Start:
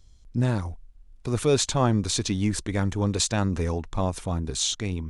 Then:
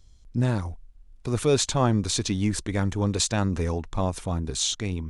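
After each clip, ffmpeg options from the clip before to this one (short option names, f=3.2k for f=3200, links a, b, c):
-af anull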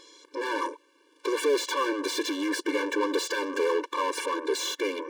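-filter_complex "[0:a]bass=f=250:g=5,treble=f=4k:g=-1,asplit=2[a][b];[b]highpass=f=720:p=1,volume=42dB,asoftclip=type=tanh:threshold=-6dB[c];[a][c]amix=inputs=2:normalize=0,lowpass=f=2.2k:p=1,volume=-6dB,afftfilt=real='re*eq(mod(floor(b*sr/1024/300),2),1)':imag='im*eq(mod(floor(b*sr/1024/300),2),1)':win_size=1024:overlap=0.75,volume=-9dB"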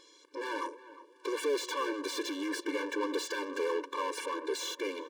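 -filter_complex "[0:a]asplit=2[a][b];[b]adelay=357,lowpass=f=1.8k:p=1,volume=-15dB,asplit=2[c][d];[d]adelay=357,lowpass=f=1.8k:p=1,volume=0.38,asplit=2[e][f];[f]adelay=357,lowpass=f=1.8k:p=1,volume=0.38[g];[a][c][e][g]amix=inputs=4:normalize=0,volume=-6.5dB"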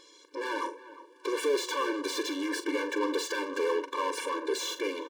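-filter_complex "[0:a]asplit=2[a][b];[b]adelay=43,volume=-11.5dB[c];[a][c]amix=inputs=2:normalize=0,volume=3dB"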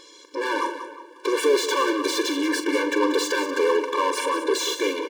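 -af "aecho=1:1:185:0.282,volume=8dB"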